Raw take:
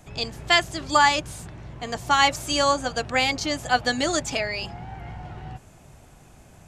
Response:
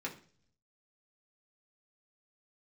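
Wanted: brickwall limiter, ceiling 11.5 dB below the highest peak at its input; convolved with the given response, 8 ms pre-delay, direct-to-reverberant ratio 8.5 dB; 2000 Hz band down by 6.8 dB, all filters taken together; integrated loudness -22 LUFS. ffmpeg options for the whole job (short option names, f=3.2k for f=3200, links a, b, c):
-filter_complex "[0:a]equalizer=f=2k:t=o:g=-8.5,alimiter=limit=-18.5dB:level=0:latency=1,asplit=2[a][b];[1:a]atrim=start_sample=2205,adelay=8[c];[b][c]afir=irnorm=-1:irlink=0,volume=-10dB[d];[a][d]amix=inputs=2:normalize=0,volume=7.5dB"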